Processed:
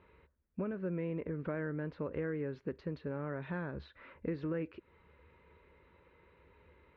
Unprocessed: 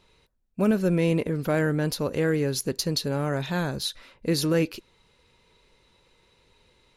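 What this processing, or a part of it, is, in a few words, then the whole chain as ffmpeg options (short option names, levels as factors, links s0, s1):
bass amplifier: -af "acompressor=threshold=0.0141:ratio=4,highpass=63,equalizer=f=72:t=q:w=4:g=10,equalizer=f=120:t=q:w=4:g=-8,equalizer=f=220:t=q:w=4:g=-4,equalizer=f=750:t=q:w=4:g=-7,lowpass=f=2100:w=0.5412,lowpass=f=2100:w=1.3066,volume=1.19"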